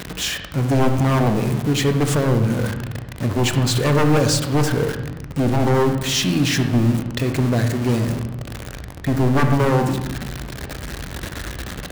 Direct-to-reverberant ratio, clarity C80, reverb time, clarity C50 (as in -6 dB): 6.0 dB, 10.0 dB, 1.1 s, 7.5 dB